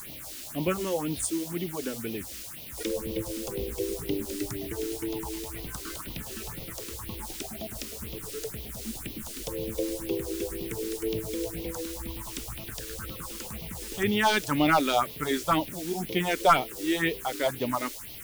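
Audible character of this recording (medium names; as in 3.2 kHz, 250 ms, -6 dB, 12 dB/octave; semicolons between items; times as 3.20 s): a quantiser's noise floor 8-bit, dither triangular; phasing stages 4, 2 Hz, lowest notch 120–1500 Hz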